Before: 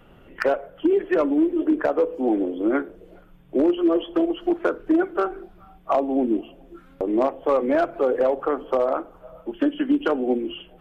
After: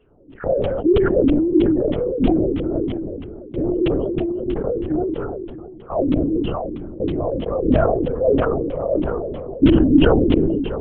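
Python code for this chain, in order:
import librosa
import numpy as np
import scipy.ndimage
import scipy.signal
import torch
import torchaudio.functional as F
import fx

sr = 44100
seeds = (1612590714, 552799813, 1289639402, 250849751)

p1 = fx.graphic_eq_10(x, sr, hz=(125, 250, 500, 1000, 2000), db=(4, 9, 7, -6, -8))
p2 = fx.filter_lfo_lowpass(p1, sr, shape='saw_down', hz=3.1, low_hz=220.0, high_hz=3100.0, q=4.3)
p3 = p2 + fx.echo_feedback(p2, sr, ms=646, feedback_pct=36, wet_db=-18, dry=0)
p4 = fx.lpc_vocoder(p3, sr, seeds[0], excitation='whisper', order=10)
p5 = fx.sustainer(p4, sr, db_per_s=25.0)
y = p5 * 10.0 ** (-12.0 / 20.0)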